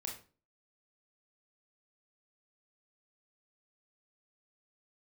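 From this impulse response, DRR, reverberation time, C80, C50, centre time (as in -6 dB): -0.5 dB, 0.40 s, 12.5 dB, 7.0 dB, 26 ms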